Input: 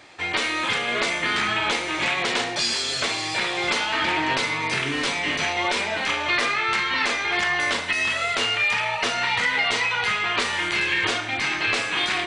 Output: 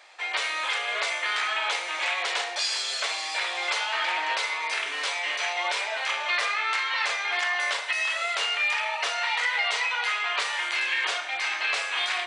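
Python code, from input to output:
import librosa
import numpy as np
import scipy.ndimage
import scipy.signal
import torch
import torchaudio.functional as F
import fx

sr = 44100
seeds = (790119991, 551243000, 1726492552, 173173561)

y = scipy.signal.sosfilt(scipy.signal.butter(4, 560.0, 'highpass', fs=sr, output='sos'), x)
y = F.gain(torch.from_numpy(y), -3.5).numpy()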